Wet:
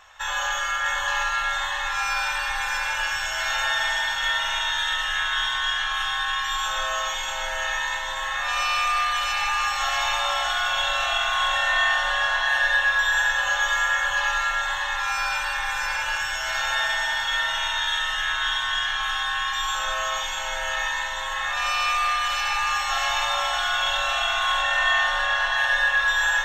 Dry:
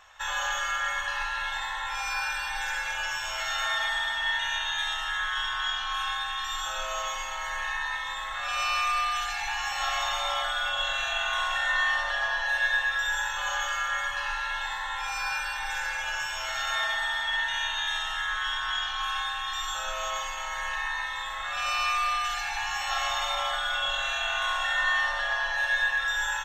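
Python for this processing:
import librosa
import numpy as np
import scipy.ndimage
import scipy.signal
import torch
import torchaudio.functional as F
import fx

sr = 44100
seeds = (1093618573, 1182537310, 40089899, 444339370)

y = fx.lowpass(x, sr, hz=6100.0, slope=12, at=(24.61, 25.36))
y = fx.echo_feedback(y, sr, ms=644, feedback_pct=51, wet_db=-4.0)
y = F.gain(torch.from_numpy(y), 3.5).numpy()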